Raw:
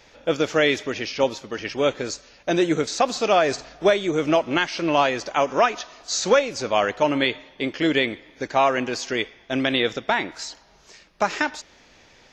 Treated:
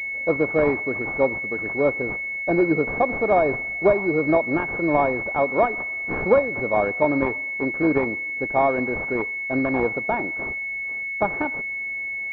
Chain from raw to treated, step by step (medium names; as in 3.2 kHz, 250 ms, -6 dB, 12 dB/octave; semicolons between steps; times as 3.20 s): class-D stage that switches slowly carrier 2.2 kHz; trim +1 dB